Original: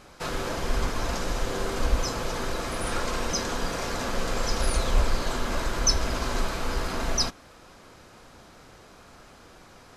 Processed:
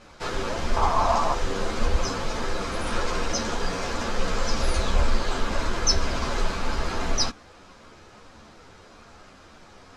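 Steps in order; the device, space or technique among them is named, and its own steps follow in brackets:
string-machine ensemble chorus (string-ensemble chorus; low-pass filter 7,300 Hz 12 dB per octave)
0:00.76–0:01.35: flat-topped bell 870 Hz +13.5 dB 1.1 octaves
level +4.5 dB

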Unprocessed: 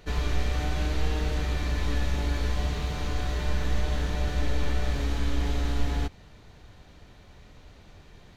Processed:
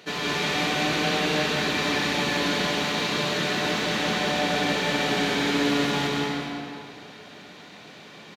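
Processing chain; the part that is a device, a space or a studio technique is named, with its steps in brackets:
stadium PA (high-pass filter 170 Hz 24 dB per octave; parametric band 3,200 Hz +5.5 dB 1.8 octaves; loudspeakers that aren't time-aligned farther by 60 metres −4 dB, 91 metres −9 dB; convolution reverb RT60 2.6 s, pre-delay 110 ms, DRR −1 dB)
level +4 dB

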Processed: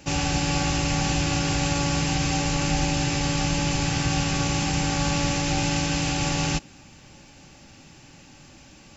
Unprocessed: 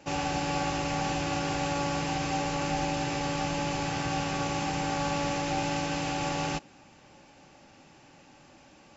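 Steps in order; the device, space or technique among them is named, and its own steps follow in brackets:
smiley-face EQ (low-shelf EQ 120 Hz +8.5 dB; parametric band 710 Hz −7 dB 2.3 octaves; high-shelf EQ 5,400 Hz +6.5 dB)
level +7 dB

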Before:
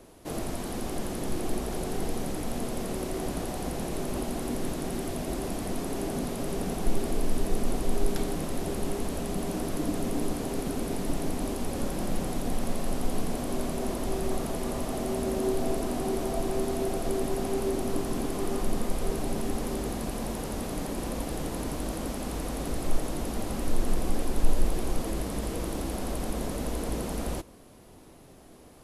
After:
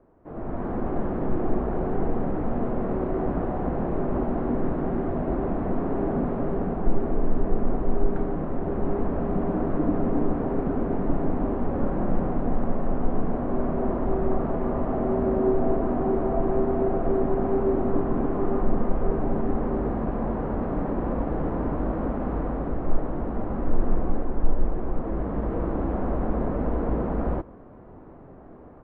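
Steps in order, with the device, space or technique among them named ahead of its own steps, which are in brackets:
action camera in a waterproof case (low-pass filter 1,500 Hz 24 dB per octave; automatic gain control gain up to 13 dB; level −6.5 dB; AAC 64 kbit/s 44,100 Hz)

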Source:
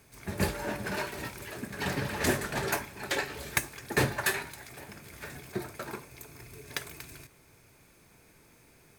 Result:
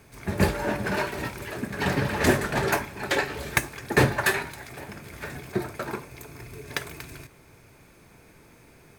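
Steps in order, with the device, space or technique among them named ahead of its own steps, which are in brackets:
behind a face mask (high-shelf EQ 3,400 Hz −7 dB)
level +7.5 dB

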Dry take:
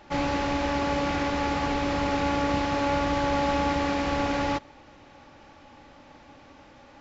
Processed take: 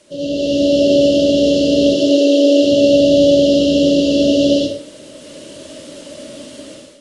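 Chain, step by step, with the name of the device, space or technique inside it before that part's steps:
0:01.92–0:02.63: Butterworth high-pass 260 Hz 96 dB per octave
brick-wall band-stop 660–2,700 Hz
filmed off a television (band-pass filter 180–6,900 Hz; parametric band 570 Hz +5 dB 0.34 octaves; convolution reverb RT60 0.50 s, pre-delay 67 ms, DRR −4.5 dB; white noise bed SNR 30 dB; automatic gain control gain up to 14 dB; AAC 48 kbit/s 22,050 Hz)

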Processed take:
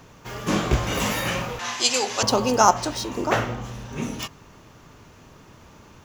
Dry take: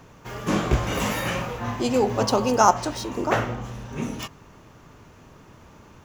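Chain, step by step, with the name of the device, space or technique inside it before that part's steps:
0:01.59–0:02.23: meter weighting curve ITU-R 468
presence and air boost (parametric band 4,400 Hz +4 dB 1.7 octaves; high-shelf EQ 11,000 Hz +4 dB)

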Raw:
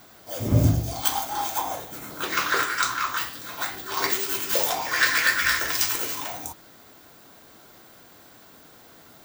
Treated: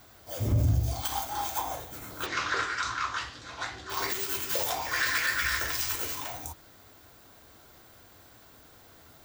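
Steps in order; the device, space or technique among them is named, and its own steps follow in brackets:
0:02.26–0:03.90: low-pass filter 6,600 Hz 24 dB per octave
car stereo with a boomy subwoofer (low shelf with overshoot 120 Hz +8 dB, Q 1.5; brickwall limiter −12.5 dBFS, peak gain reduction 10 dB)
level −4.5 dB

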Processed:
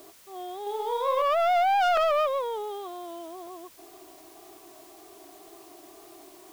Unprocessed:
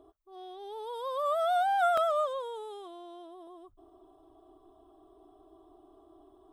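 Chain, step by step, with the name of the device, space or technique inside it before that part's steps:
tape answering machine (band-pass filter 330–3,200 Hz; soft clipping −28.5 dBFS, distortion −12 dB; tape wow and flutter; white noise bed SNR 25 dB)
0:00.62–0:01.22: double-tracking delay 44 ms −3 dB
level +9 dB

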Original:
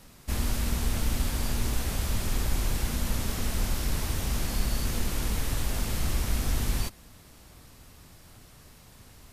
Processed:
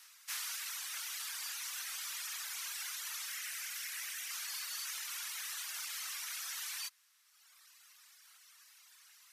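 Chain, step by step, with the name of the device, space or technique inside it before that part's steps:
headphones lying on a table (high-pass filter 1,300 Hz 24 dB per octave; parametric band 5,900 Hz +4 dB 0.25 octaves)
reverb reduction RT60 1.6 s
0:03.28–0:04.31: octave-band graphic EQ 1,000/2,000/4,000 Hz −8/+6/−4 dB
level −1 dB

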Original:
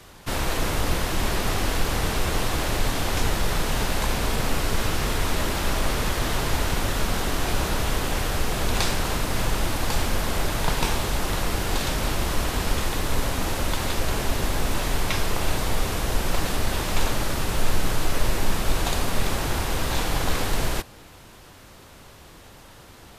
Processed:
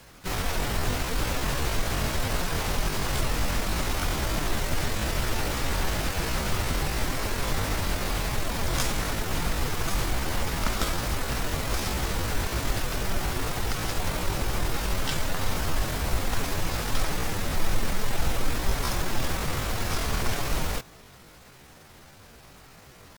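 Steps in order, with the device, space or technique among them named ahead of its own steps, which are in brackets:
chipmunk voice (pitch shifter +6 semitones)
level −3 dB

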